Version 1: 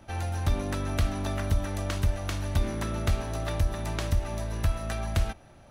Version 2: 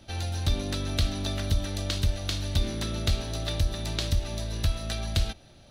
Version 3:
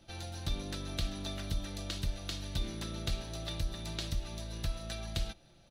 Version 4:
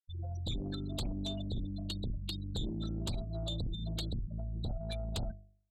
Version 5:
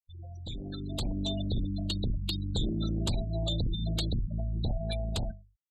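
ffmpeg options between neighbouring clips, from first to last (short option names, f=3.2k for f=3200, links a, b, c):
-af "equalizer=f=1k:t=o:w=1:g=-7,equalizer=f=2k:t=o:w=1:g=-3,equalizer=f=4k:t=o:w=1:g=12"
-af "aecho=1:1:5.9:0.4,volume=-8.5dB"
-af "afftfilt=real='re*gte(hypot(re,im),0.0251)':imag='im*gte(hypot(re,im),0.0251)':win_size=1024:overlap=0.75,bandreject=f=50.1:t=h:w=4,bandreject=f=100.2:t=h:w=4,bandreject=f=150.3:t=h:w=4,bandreject=f=200.4:t=h:w=4,bandreject=f=250.5:t=h:w=4,bandreject=f=300.6:t=h:w=4,bandreject=f=350.7:t=h:w=4,bandreject=f=400.8:t=h:w=4,bandreject=f=450.9:t=h:w=4,bandreject=f=501:t=h:w=4,bandreject=f=551.1:t=h:w=4,bandreject=f=601.2:t=h:w=4,bandreject=f=651.3:t=h:w=4,bandreject=f=701.4:t=h:w=4,bandreject=f=751.5:t=h:w=4,bandreject=f=801.6:t=h:w=4,bandreject=f=851.7:t=h:w=4,bandreject=f=901.8:t=h:w=4,bandreject=f=951.9:t=h:w=4,bandreject=f=1.002k:t=h:w=4,bandreject=f=1.0521k:t=h:w=4,bandreject=f=1.1022k:t=h:w=4,bandreject=f=1.1523k:t=h:w=4,bandreject=f=1.2024k:t=h:w=4,bandreject=f=1.2525k:t=h:w=4,bandreject=f=1.3026k:t=h:w=4,bandreject=f=1.3527k:t=h:w=4,bandreject=f=1.4028k:t=h:w=4,bandreject=f=1.4529k:t=h:w=4,aeval=exprs='0.0631*sin(PI/2*2.82*val(0)/0.0631)':c=same,volume=-7dB"
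-af "afftfilt=real='re*gte(hypot(re,im),0.00316)':imag='im*gte(hypot(re,im),0.00316)':win_size=1024:overlap=0.75,dynaudnorm=f=370:g=5:m=11.5dB,volume=-5dB"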